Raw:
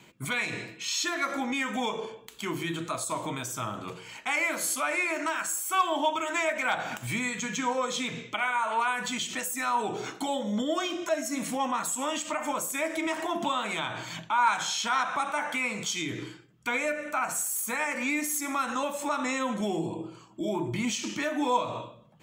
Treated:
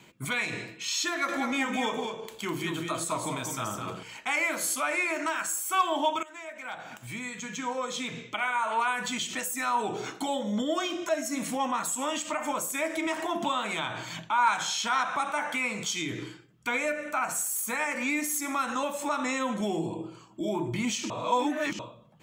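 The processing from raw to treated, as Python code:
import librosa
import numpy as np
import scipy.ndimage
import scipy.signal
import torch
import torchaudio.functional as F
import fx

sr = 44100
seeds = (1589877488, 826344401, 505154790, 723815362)

y = fx.echo_single(x, sr, ms=205, db=-5.5, at=(1.08, 4.03))
y = fx.edit(y, sr, fx.fade_in_from(start_s=6.23, length_s=2.47, floor_db=-18.0),
    fx.reverse_span(start_s=21.1, length_s=0.69), tone=tone)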